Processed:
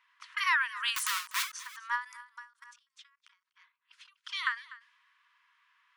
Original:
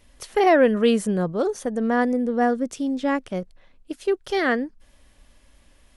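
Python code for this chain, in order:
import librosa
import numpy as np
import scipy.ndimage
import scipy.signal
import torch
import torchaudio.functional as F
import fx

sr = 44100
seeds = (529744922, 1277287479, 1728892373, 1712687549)

y = fx.env_lowpass(x, sr, base_hz=1900.0, full_db=-17.5)
y = fx.overflow_wrap(y, sr, gain_db=24.0, at=(0.96, 1.53))
y = fx.level_steps(y, sr, step_db=22, at=(2.25, 3.32))
y = fx.env_flanger(y, sr, rest_ms=7.4, full_db=-22.0, at=(4.04, 4.47))
y = fx.brickwall_highpass(y, sr, low_hz=930.0)
y = y + 10.0 ** (-19.0 / 20.0) * np.pad(y, (int(246 * sr / 1000.0), 0))[:len(y)]
y = fx.end_taper(y, sr, db_per_s=190.0)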